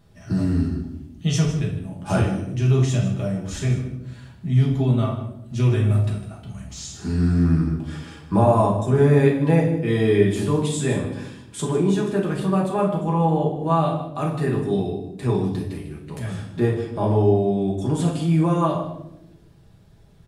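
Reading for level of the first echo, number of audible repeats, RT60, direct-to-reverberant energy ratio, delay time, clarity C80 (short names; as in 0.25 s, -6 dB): -13.0 dB, 1, 0.85 s, -3.5 dB, 0.153 s, 8.5 dB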